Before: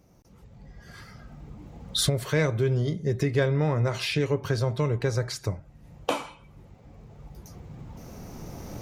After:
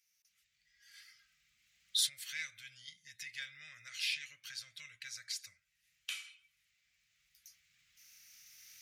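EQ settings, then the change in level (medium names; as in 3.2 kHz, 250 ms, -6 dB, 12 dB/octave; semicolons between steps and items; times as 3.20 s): inverse Chebyshev high-pass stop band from 1 kHz, stop band 40 dB; -5.0 dB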